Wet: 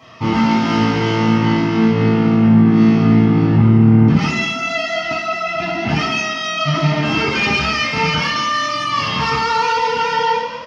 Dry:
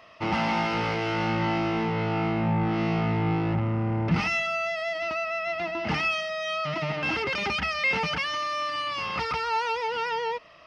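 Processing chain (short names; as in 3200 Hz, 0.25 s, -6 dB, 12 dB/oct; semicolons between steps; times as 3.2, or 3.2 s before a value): HPF 86 Hz; limiter -22.5 dBFS, peak gain reduction 9.5 dB; frequency-shifting echo 0.218 s, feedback 39%, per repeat +40 Hz, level -10.5 dB; reverb RT60 0.70 s, pre-delay 3 ms, DRR -9.5 dB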